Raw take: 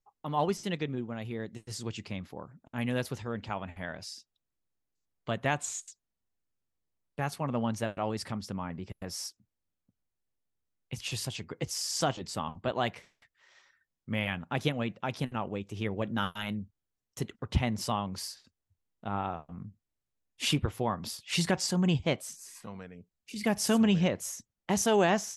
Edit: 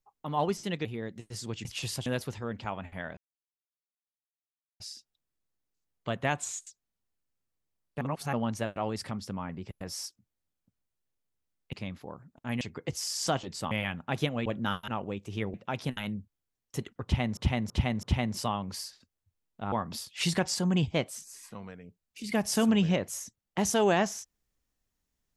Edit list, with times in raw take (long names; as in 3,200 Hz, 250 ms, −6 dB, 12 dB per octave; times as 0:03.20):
0:00.85–0:01.22: remove
0:02.02–0:02.90: swap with 0:10.94–0:11.35
0:04.01: splice in silence 1.63 s
0:07.22–0:07.54: reverse
0:12.45–0:14.14: remove
0:14.89–0:15.32: swap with 0:15.98–0:16.40
0:17.47–0:17.80: repeat, 4 plays
0:19.16–0:20.84: remove